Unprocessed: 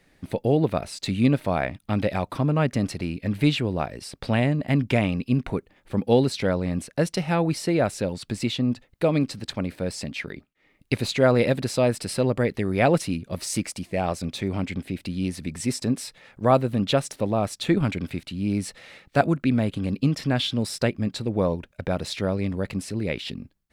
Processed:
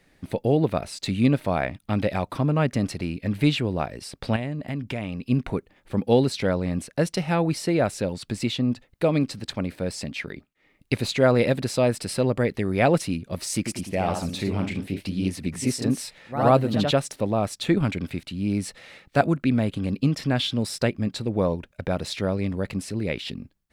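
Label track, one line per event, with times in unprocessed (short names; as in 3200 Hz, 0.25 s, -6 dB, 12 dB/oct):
4.360000	5.290000	compressor 2.5:1, threshold -30 dBFS
13.560000	17.010000	echoes that change speed 96 ms, each echo +1 st, echoes 2, each echo -6 dB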